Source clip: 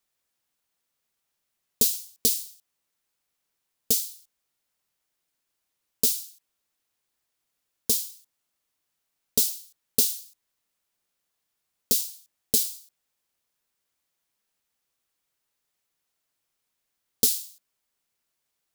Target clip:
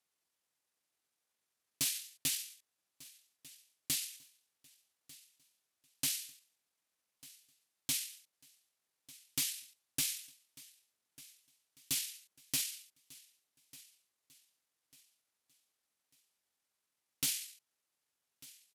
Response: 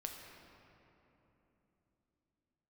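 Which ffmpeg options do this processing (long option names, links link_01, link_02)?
-filter_complex "[0:a]highpass=frequency=220:poles=1,alimiter=limit=-13dB:level=0:latency=1:release=234,asetrate=26990,aresample=44100,atempo=1.63392,asoftclip=type=hard:threshold=-22dB,asplit=2[link_01][link_02];[link_02]aecho=0:1:1196|2392|3588:0.0891|0.033|0.0122[link_03];[link_01][link_03]amix=inputs=2:normalize=0,volume=-5.5dB"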